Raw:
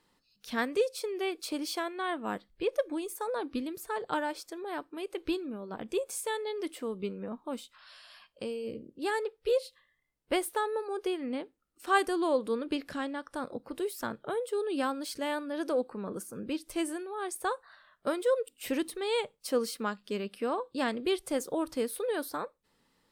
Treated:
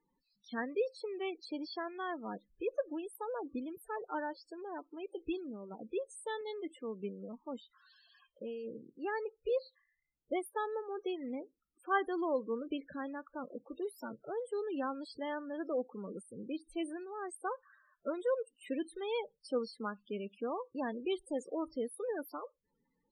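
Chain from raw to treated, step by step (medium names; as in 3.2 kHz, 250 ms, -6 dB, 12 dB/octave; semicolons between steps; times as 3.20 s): loudest bins only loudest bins 16; 6.41–7.42 s: three bands expanded up and down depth 40%; trim -5.5 dB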